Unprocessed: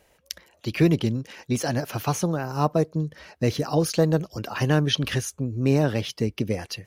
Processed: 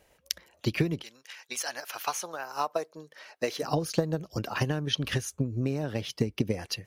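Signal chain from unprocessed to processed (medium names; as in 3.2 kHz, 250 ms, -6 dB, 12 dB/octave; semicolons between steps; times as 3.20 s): 1.01–3.62 s: high-pass 1.4 kHz -> 500 Hz 12 dB/octave; compression 5:1, threshold -24 dBFS, peak gain reduction 10 dB; transient shaper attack +6 dB, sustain 0 dB; trim -3 dB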